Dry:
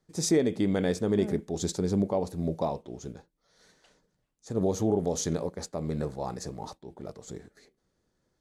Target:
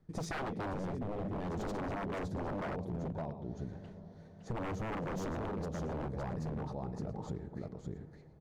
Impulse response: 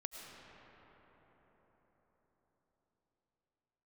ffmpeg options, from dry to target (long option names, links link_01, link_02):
-filter_complex "[0:a]bass=frequency=250:gain=9,treble=frequency=4000:gain=-7,bandreject=frequency=7700:width=20,aecho=1:1:563|678:0.501|0.106,asplit=2[link_01][link_02];[1:a]atrim=start_sample=2205[link_03];[link_02][link_03]afir=irnorm=-1:irlink=0,volume=-16.5dB[link_04];[link_01][link_04]amix=inputs=2:normalize=0,asettb=1/sr,asplit=3[link_05][link_06][link_07];[link_05]atrim=end=0.734[link_08];[link_06]atrim=start=0.73:end=1.36,asetpts=PTS-STARTPTS,afade=type=in:duration=0.004:curve=qsin,afade=type=out:start_time=0.626:duration=0.004:curve=qsin,acrossover=split=200[link_09][link_10];[link_10]acompressor=threshold=-34dB:ratio=3[link_11];[link_09][link_11]amix=inputs=2:normalize=0[link_12];[link_07]atrim=start=1.356[link_13];[link_08][link_12]acrossfade=duration=0.004:curve1=hsin:curve2=qsin[link_14];[link_14][link_13]acrossfade=duration=0.004:curve1=qsin:curve2=hsin,aeval=exprs='0.0531*(abs(mod(val(0)/0.0531+3,4)-2)-1)':channel_layout=same,highshelf=frequency=3000:gain=-9.5,acompressor=threshold=-38dB:ratio=5,volume=1.5dB"